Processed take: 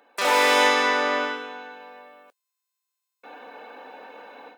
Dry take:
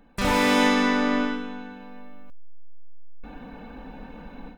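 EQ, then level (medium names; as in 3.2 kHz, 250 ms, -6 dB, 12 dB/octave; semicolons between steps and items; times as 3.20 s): high-pass 420 Hz 24 dB/octave; +4.0 dB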